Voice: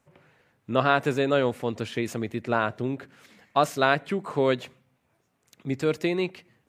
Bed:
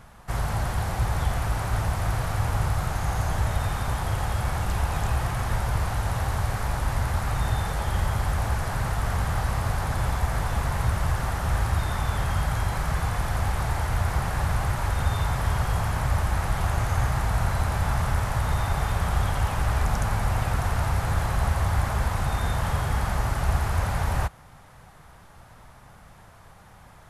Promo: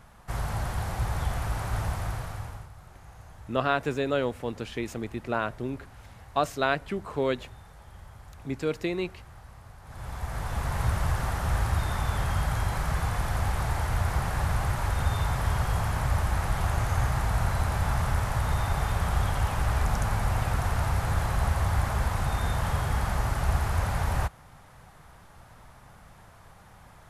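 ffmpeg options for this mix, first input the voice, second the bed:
-filter_complex "[0:a]adelay=2800,volume=0.631[s0];[1:a]volume=6.68,afade=t=out:st=1.89:d=0.79:silence=0.11885,afade=t=in:st=9.83:d=1.04:silence=0.0944061[s1];[s0][s1]amix=inputs=2:normalize=0"

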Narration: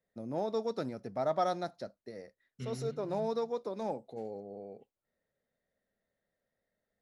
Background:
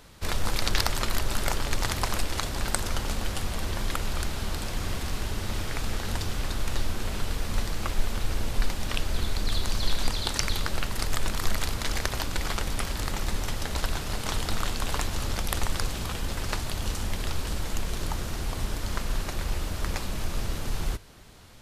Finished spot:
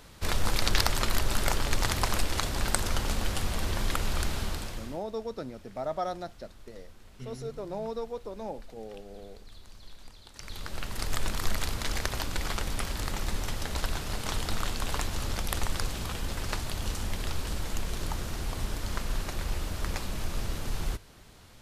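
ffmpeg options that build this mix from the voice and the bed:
-filter_complex "[0:a]adelay=4600,volume=0.841[s0];[1:a]volume=10.6,afade=t=out:st=4.35:d=0.66:silence=0.0707946,afade=t=in:st=10.33:d=0.84:silence=0.0944061[s1];[s0][s1]amix=inputs=2:normalize=0"

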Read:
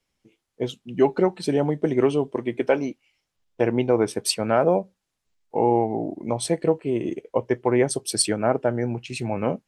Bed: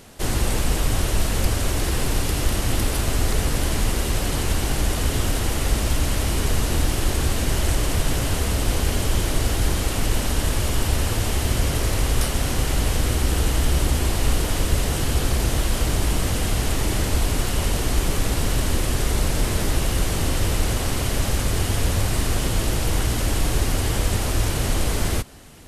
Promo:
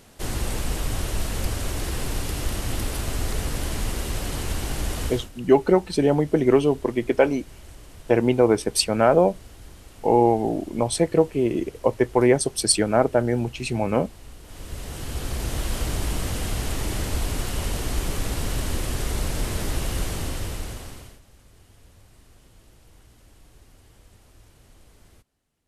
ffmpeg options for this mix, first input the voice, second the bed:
-filter_complex "[0:a]adelay=4500,volume=1.33[s0];[1:a]volume=4.47,afade=t=out:st=5.04:d=0.25:silence=0.125893,afade=t=in:st=14.42:d=1.3:silence=0.11885,afade=t=out:st=20.02:d=1.18:silence=0.0473151[s1];[s0][s1]amix=inputs=2:normalize=0"

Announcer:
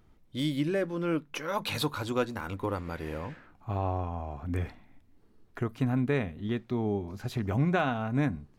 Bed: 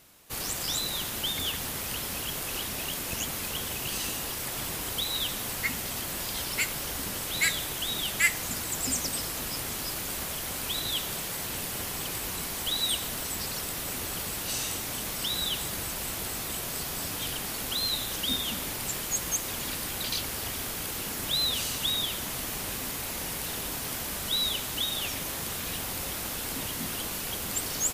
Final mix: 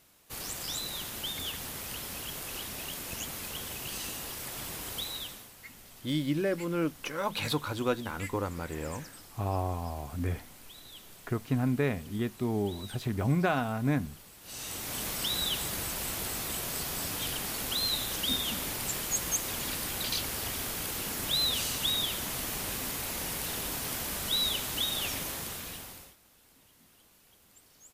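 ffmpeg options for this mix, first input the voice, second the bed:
-filter_complex "[0:a]adelay=5700,volume=0.944[s0];[1:a]volume=4.22,afade=t=out:st=5.01:d=0.49:silence=0.211349,afade=t=in:st=14.41:d=0.61:silence=0.125893,afade=t=out:st=25.14:d=1.02:silence=0.0446684[s1];[s0][s1]amix=inputs=2:normalize=0"

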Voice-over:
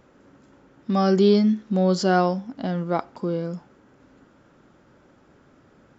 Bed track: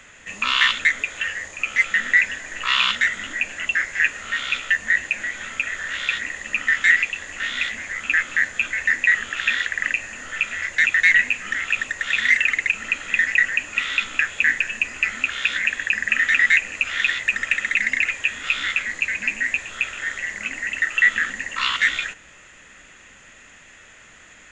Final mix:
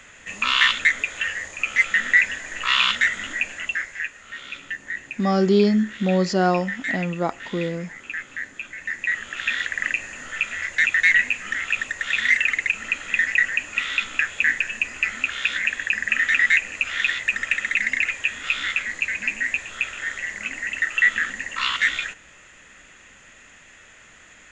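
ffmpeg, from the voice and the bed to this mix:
-filter_complex "[0:a]adelay=4300,volume=1[s0];[1:a]volume=3.16,afade=t=out:st=3.32:d=0.77:silence=0.266073,afade=t=in:st=8.77:d=1:silence=0.316228[s1];[s0][s1]amix=inputs=2:normalize=0"

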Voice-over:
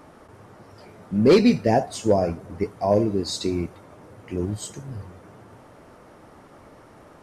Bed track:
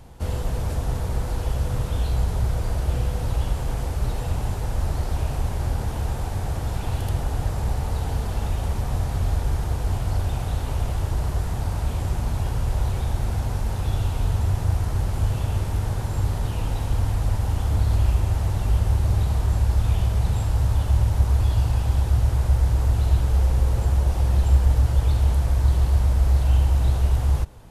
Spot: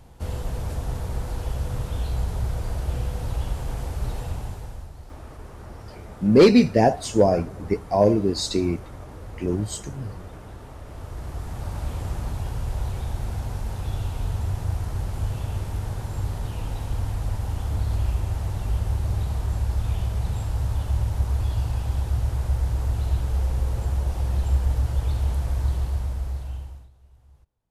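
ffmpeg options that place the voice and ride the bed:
-filter_complex "[0:a]adelay=5100,volume=1.26[s0];[1:a]volume=2.82,afade=t=out:st=4.17:d=0.73:silence=0.211349,afade=t=in:st=10.84:d=0.99:silence=0.237137,afade=t=out:st=25.61:d=1.28:silence=0.0334965[s1];[s0][s1]amix=inputs=2:normalize=0"

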